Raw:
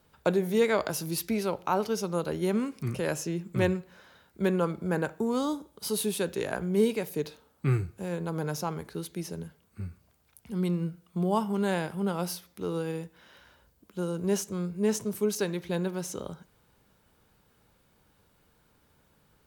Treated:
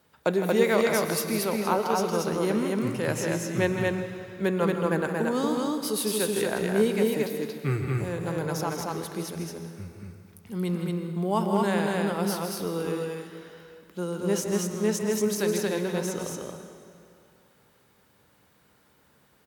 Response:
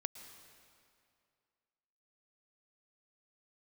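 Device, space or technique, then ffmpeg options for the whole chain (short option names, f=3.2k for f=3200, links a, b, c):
stadium PA: -filter_complex "[0:a]highpass=f=150:p=1,equalizer=f=1.9k:t=o:w=0.24:g=4,aecho=1:1:160.3|230.3:0.355|0.794[a];[1:a]atrim=start_sample=2205[b];[a][b]afir=irnorm=-1:irlink=0,volume=3.5dB"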